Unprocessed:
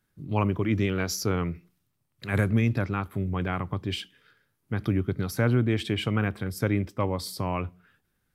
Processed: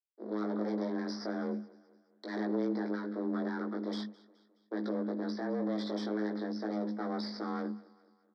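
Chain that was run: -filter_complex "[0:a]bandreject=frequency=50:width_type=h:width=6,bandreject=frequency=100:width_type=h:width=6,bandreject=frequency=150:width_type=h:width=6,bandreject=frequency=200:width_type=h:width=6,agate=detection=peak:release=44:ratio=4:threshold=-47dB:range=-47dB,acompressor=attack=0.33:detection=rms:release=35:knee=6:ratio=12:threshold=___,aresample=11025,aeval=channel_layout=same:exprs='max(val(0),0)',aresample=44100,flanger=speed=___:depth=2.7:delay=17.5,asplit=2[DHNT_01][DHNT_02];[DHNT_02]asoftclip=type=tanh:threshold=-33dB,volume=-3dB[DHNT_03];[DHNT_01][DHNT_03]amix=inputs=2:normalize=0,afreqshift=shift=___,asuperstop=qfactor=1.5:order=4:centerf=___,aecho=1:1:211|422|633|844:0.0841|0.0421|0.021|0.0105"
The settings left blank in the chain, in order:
-26dB, 0.43, 210, 2700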